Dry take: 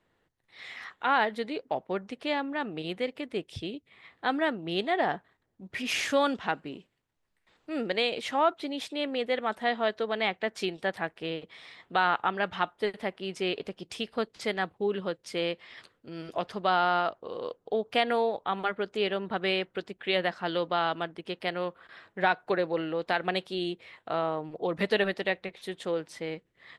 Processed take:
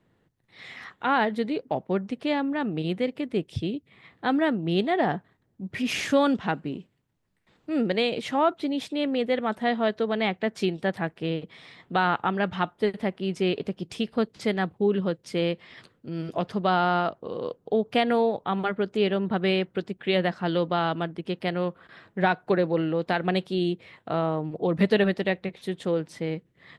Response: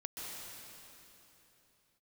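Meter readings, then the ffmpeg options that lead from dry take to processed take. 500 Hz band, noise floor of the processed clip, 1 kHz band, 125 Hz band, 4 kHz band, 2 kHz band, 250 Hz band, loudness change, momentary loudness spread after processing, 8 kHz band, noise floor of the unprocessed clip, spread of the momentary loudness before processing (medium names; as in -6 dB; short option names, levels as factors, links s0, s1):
+4.0 dB, -69 dBFS, +1.5 dB, +11.5 dB, 0.0 dB, +0.5 dB, +8.5 dB, +3.5 dB, 9 LU, no reading, -74 dBFS, 12 LU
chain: -af "equalizer=f=150:t=o:w=2.5:g=12"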